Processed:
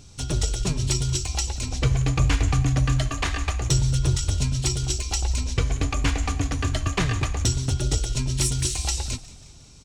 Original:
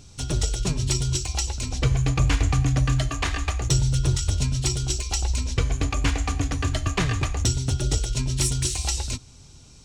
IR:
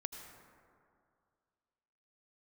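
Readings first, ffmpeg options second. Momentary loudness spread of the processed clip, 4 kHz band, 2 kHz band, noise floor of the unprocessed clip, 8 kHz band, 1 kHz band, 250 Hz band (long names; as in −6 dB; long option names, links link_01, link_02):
5 LU, 0.0 dB, 0.0 dB, −48 dBFS, 0.0 dB, 0.0 dB, 0.0 dB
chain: -filter_complex "[0:a]asplit=5[link_01][link_02][link_03][link_04][link_05];[link_02]adelay=180,afreqshift=-51,volume=-19dB[link_06];[link_03]adelay=360,afreqshift=-102,volume=-24.4dB[link_07];[link_04]adelay=540,afreqshift=-153,volume=-29.7dB[link_08];[link_05]adelay=720,afreqshift=-204,volume=-35.1dB[link_09];[link_01][link_06][link_07][link_08][link_09]amix=inputs=5:normalize=0"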